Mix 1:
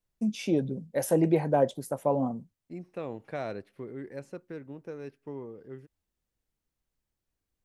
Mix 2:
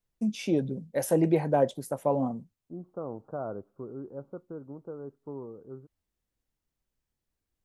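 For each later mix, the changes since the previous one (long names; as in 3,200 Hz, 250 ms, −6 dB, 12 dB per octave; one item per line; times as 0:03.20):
second voice: add Butterworth low-pass 1,400 Hz 96 dB per octave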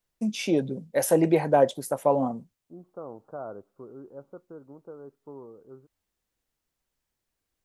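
first voice +6.5 dB
master: add low-shelf EQ 300 Hz −9 dB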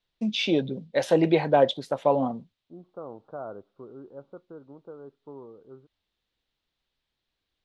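master: add low-pass with resonance 3,700 Hz, resonance Q 3.3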